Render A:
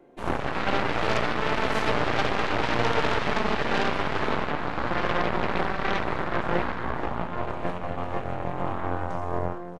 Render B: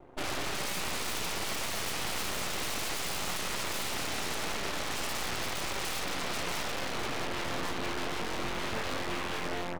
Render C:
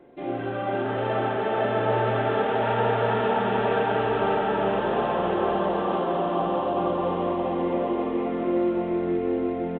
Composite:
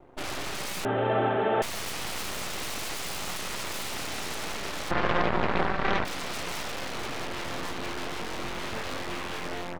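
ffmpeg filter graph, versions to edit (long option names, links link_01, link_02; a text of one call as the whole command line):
ffmpeg -i take0.wav -i take1.wav -i take2.wav -filter_complex "[1:a]asplit=3[link_01][link_02][link_03];[link_01]atrim=end=0.852[link_04];[2:a]atrim=start=0.848:end=1.622[link_05];[link_02]atrim=start=1.618:end=4.912[link_06];[0:a]atrim=start=4.908:end=6.052[link_07];[link_03]atrim=start=6.048[link_08];[link_04][link_05]acrossfade=duration=0.004:curve1=hsin:curve2=hsin[link_09];[link_09][link_06]acrossfade=duration=0.004:curve1=hsin:curve2=hsin[link_10];[link_10][link_07]acrossfade=duration=0.004:curve1=hsin:curve2=hsin[link_11];[link_11][link_08]acrossfade=duration=0.004:curve1=hsin:curve2=hsin" out.wav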